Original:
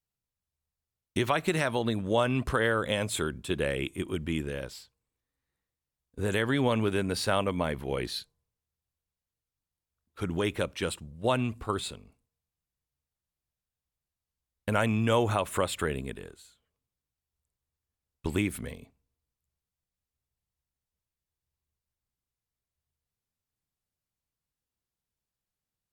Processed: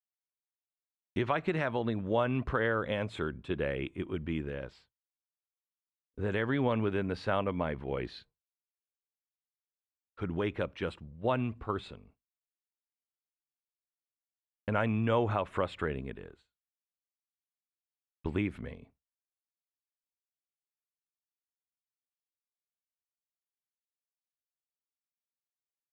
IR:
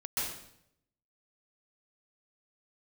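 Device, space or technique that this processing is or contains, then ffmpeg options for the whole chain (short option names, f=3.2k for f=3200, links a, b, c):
hearing-loss simulation: -af "lowpass=2.4k,agate=range=-33dB:threshold=-53dB:ratio=3:detection=peak,volume=-3dB"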